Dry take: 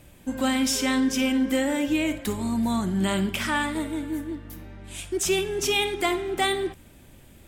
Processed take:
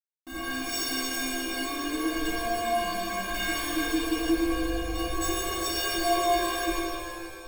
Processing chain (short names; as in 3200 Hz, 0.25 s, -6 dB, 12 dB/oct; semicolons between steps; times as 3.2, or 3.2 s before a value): rotary speaker horn 7.5 Hz, later 0.85 Hz, at 0.68; in parallel at +1 dB: compressor 5:1, threshold -38 dBFS, peak gain reduction 16 dB; on the sum: Schmitt trigger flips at -32 dBFS; metallic resonator 330 Hz, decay 0.49 s, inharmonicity 0.03; shimmer reverb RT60 2.3 s, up +7 st, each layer -8 dB, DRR -6.5 dB; gain +8.5 dB